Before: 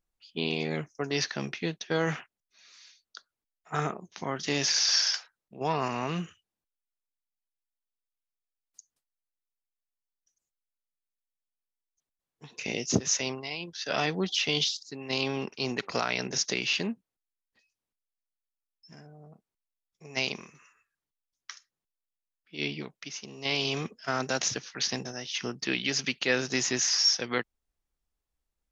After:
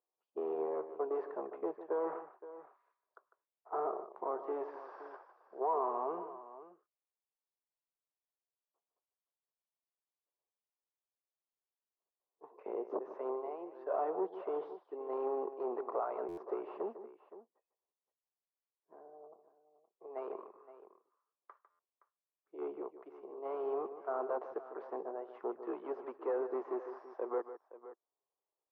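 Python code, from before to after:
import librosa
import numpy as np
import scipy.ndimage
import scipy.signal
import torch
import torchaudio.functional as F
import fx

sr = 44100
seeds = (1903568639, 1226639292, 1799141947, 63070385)

p1 = np.clip(x, -10.0 ** (-27.5 / 20.0), 10.0 ** (-27.5 / 20.0))
p2 = scipy.signal.sosfilt(scipy.signal.cheby1(3, 1.0, [370.0, 1100.0], 'bandpass', fs=sr, output='sos'), p1)
p3 = p2 + fx.echo_multitap(p2, sr, ms=(151, 519), db=(-12.0, -15.0), dry=0)
p4 = fx.buffer_glitch(p3, sr, at_s=(16.28, 21.7), block=512, repeats=7)
y = p4 * 10.0 ** (1.5 / 20.0)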